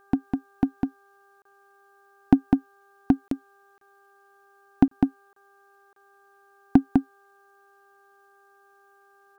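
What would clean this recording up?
de-hum 397.6 Hz, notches 4; interpolate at 1.42/3.28/3.78/4.88/5.33/5.93 s, 33 ms; inverse comb 202 ms -3.5 dB

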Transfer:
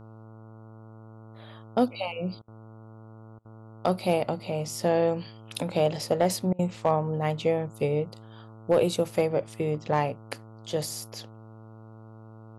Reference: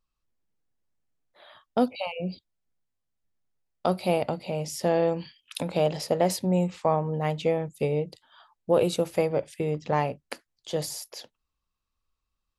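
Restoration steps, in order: clip repair -13 dBFS; de-hum 110.7 Hz, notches 13; interpolate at 2.42/3.39/6.53 s, 59 ms

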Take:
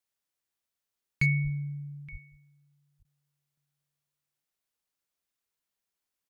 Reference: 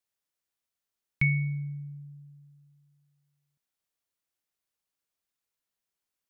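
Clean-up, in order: clip repair -17.5 dBFS; de-plosive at 1.43/2.11 s; interpolate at 3.03 s, 17 ms; inverse comb 872 ms -21 dB

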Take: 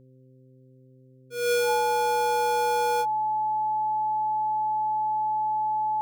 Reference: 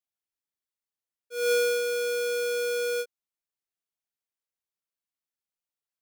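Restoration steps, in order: de-hum 129.6 Hz, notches 4; band-stop 860 Hz, Q 30

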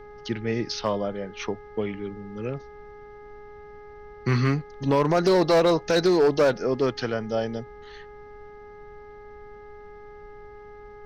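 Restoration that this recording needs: clip repair -14.5 dBFS; de-hum 416 Hz, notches 5; noise reduction 24 dB, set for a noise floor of -45 dBFS

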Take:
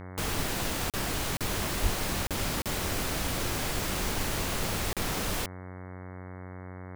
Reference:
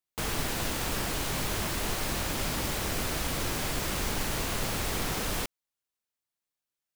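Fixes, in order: de-hum 92 Hz, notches 24; 1.82–1.94 s: high-pass 140 Hz 24 dB/octave; interpolate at 0.90/1.37/2.27/2.62/4.93 s, 37 ms

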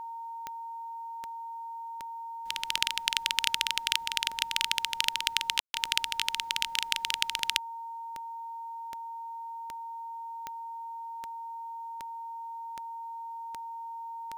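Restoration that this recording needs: de-click; band-stop 920 Hz, Q 30; room tone fill 5.60–5.74 s

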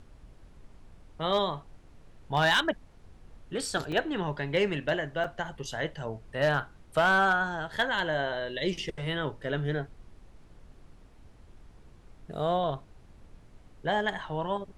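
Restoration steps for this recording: clip repair -17 dBFS; interpolate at 3.92/5.24 s, 4.2 ms; noise print and reduce 20 dB

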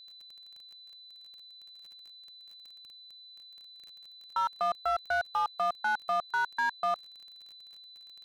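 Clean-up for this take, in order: clip repair -23.5 dBFS; de-click; band-stop 4 kHz, Q 30

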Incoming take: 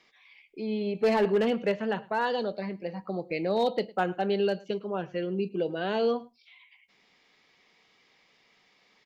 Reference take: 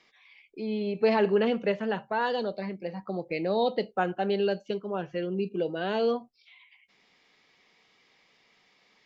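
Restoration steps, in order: clip repair -18 dBFS; inverse comb 106 ms -22.5 dB

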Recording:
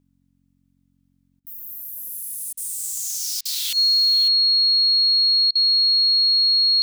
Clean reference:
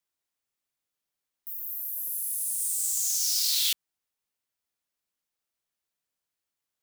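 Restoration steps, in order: de-hum 45.5 Hz, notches 6; band-stop 4.3 kHz, Q 30; interpolate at 1.40/2.53/3.41/5.51 s, 42 ms; inverse comb 551 ms -13.5 dB

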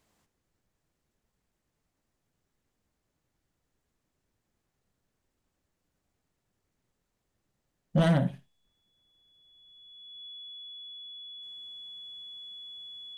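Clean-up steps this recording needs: clip repair -17.5 dBFS; band-stop 3.4 kHz, Q 30; inverse comb 82 ms -18.5 dB

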